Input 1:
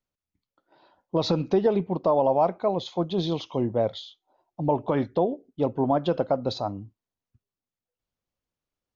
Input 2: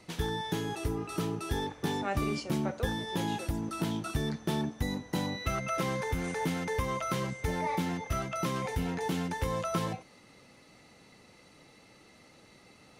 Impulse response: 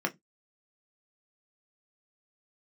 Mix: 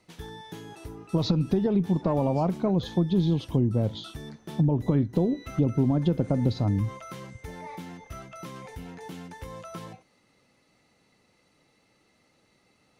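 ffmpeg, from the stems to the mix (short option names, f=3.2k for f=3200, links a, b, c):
-filter_complex "[0:a]asubboost=boost=10.5:cutoff=230,volume=0dB[a];[1:a]volume=-8.5dB[b];[a][b]amix=inputs=2:normalize=0,acompressor=threshold=-21dB:ratio=4"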